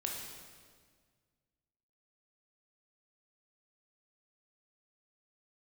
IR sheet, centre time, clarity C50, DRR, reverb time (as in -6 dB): 72 ms, 2.0 dB, -1.0 dB, 1.7 s